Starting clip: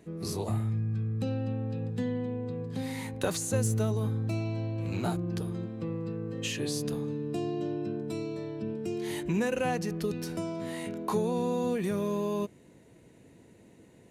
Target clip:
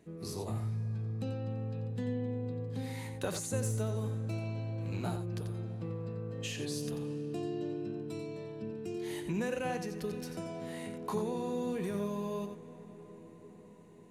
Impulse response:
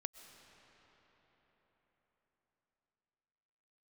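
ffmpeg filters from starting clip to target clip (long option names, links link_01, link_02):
-filter_complex "[0:a]asplit=2[link_01][link_02];[1:a]atrim=start_sample=2205,asetrate=23373,aresample=44100,adelay=89[link_03];[link_02][link_03]afir=irnorm=-1:irlink=0,volume=-8dB[link_04];[link_01][link_04]amix=inputs=2:normalize=0,volume=-6dB"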